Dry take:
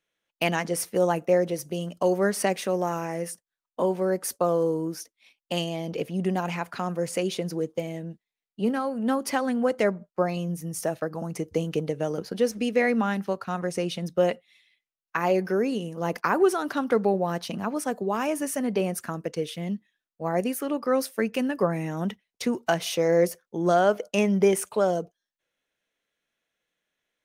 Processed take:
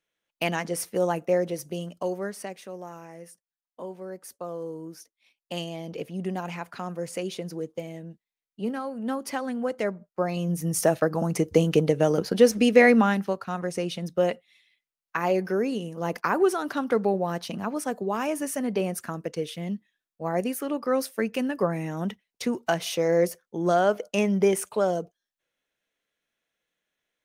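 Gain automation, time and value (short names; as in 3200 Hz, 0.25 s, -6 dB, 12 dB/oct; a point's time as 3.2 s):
1.78 s -2 dB
2.53 s -13 dB
4.31 s -13 dB
5.62 s -4.5 dB
10.08 s -4.5 dB
10.69 s +6.5 dB
12.9 s +6.5 dB
13.41 s -1 dB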